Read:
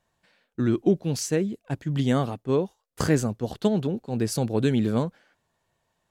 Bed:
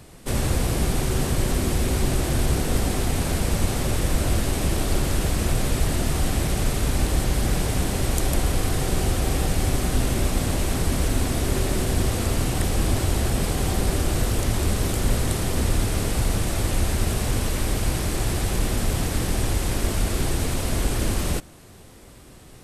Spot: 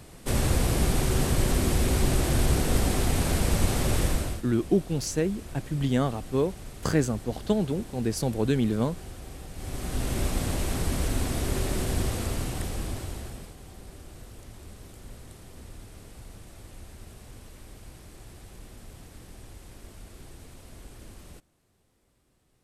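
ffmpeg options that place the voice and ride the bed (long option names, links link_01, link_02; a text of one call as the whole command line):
ffmpeg -i stem1.wav -i stem2.wav -filter_complex "[0:a]adelay=3850,volume=-2dB[link_01];[1:a]volume=12.5dB,afade=type=out:start_time=4.02:duration=0.4:silence=0.133352,afade=type=in:start_time=9.53:duration=0.68:silence=0.199526,afade=type=out:start_time=11.97:duration=1.58:silence=0.125893[link_02];[link_01][link_02]amix=inputs=2:normalize=0" out.wav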